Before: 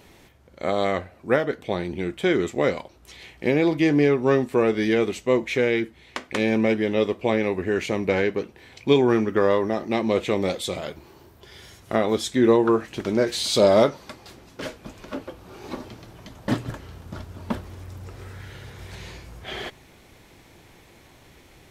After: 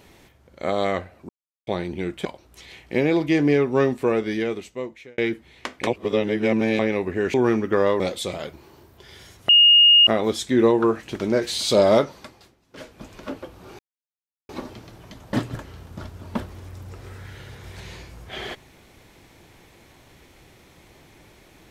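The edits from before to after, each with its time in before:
0:01.29–0:01.67: silence
0:02.25–0:02.76: remove
0:04.47–0:05.69: fade out
0:06.38–0:07.30: reverse
0:07.85–0:08.98: remove
0:09.64–0:10.43: remove
0:11.92: insert tone 2,850 Hz −9.5 dBFS 0.58 s
0:14.00–0:14.93: duck −16 dB, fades 0.41 s
0:15.64: splice in silence 0.70 s

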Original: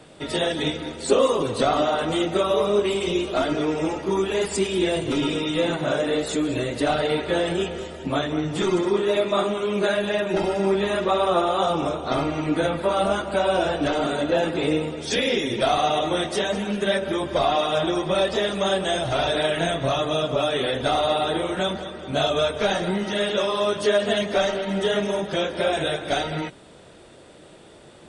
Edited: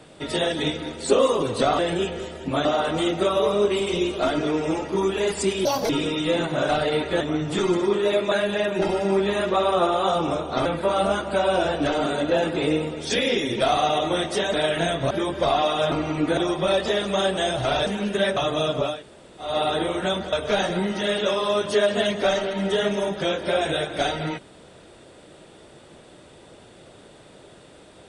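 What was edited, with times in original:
0:04.79–0:05.19: play speed 163%
0:05.98–0:06.86: remove
0:07.38–0:08.24: move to 0:01.79
0:09.35–0:09.86: remove
0:12.20–0:12.66: move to 0:17.85
0:16.54–0:17.04: swap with 0:19.34–0:19.91
0:20.46–0:21.04: fill with room tone, crossfade 0.24 s
0:21.87–0:22.44: remove

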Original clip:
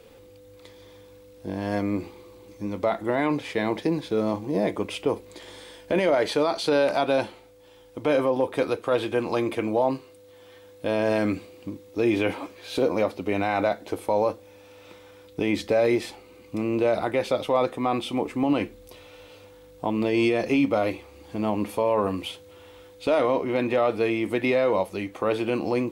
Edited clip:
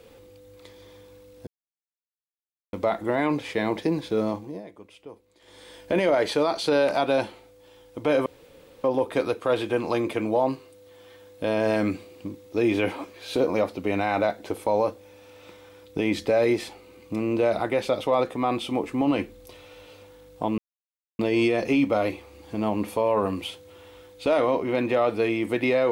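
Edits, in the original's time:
0:01.47–0:02.73: silence
0:04.22–0:05.79: duck −18.5 dB, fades 0.41 s
0:08.26: splice in room tone 0.58 s
0:20.00: splice in silence 0.61 s

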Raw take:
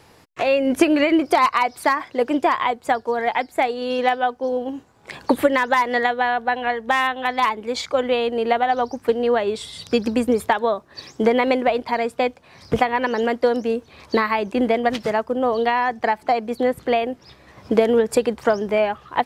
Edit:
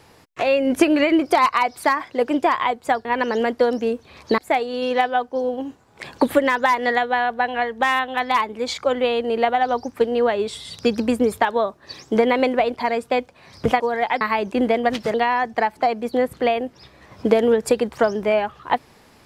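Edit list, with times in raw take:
0:03.05–0:03.46: swap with 0:12.88–0:14.21
0:15.14–0:15.60: remove

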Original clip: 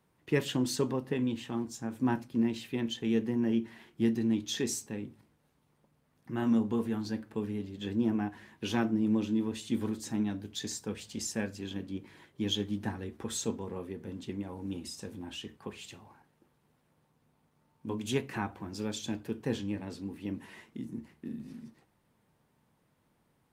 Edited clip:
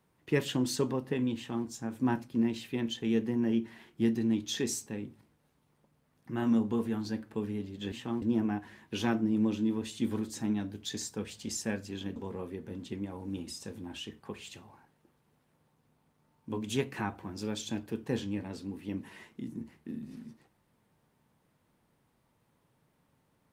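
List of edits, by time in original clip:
0:01.36–0:01.66: duplicate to 0:07.92
0:11.86–0:13.53: remove

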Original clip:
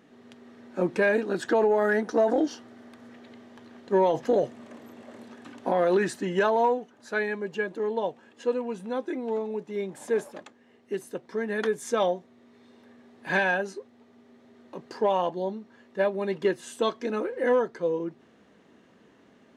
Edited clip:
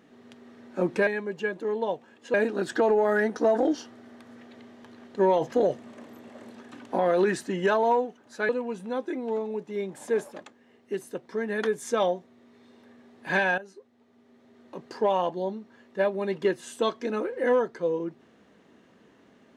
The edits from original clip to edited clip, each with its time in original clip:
0:07.22–0:08.49: move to 0:01.07
0:13.58–0:14.78: fade in, from −14.5 dB

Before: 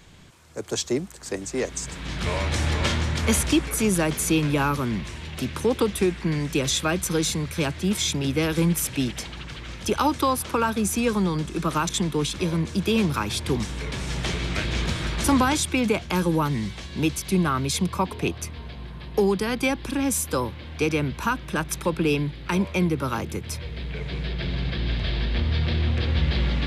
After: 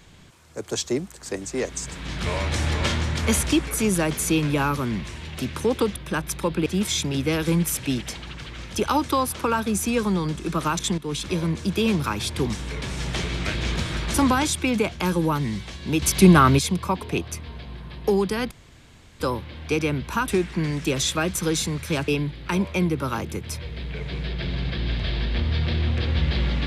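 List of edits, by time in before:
0:05.96–0:07.76: swap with 0:21.38–0:22.08
0:12.08–0:12.33: fade in, from −12.5 dB
0:17.12–0:17.69: clip gain +9 dB
0:19.61–0:20.30: fill with room tone

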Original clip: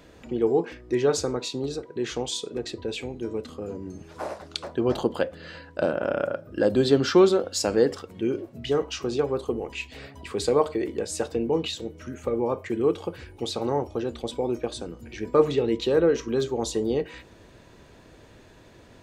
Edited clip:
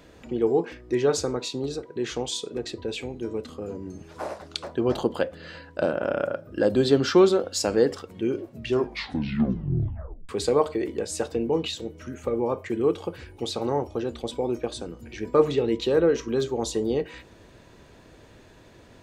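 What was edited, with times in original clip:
0:08.55: tape stop 1.74 s

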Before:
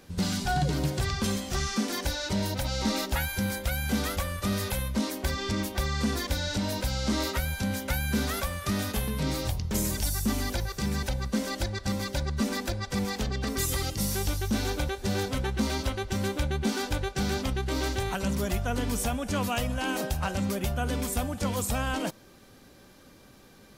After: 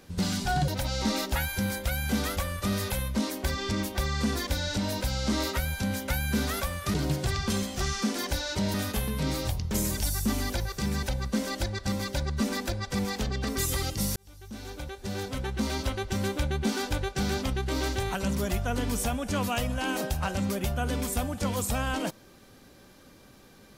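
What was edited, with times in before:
0:00.68–0:02.48: move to 0:08.74
0:14.16–0:15.94: fade in

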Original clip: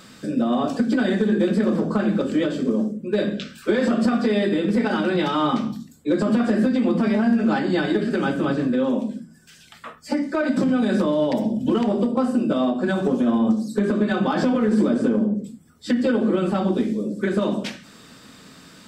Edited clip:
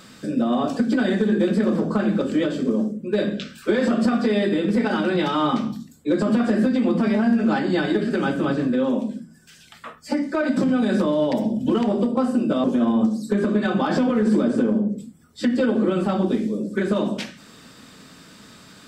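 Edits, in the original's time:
0:12.64–0:13.10: remove

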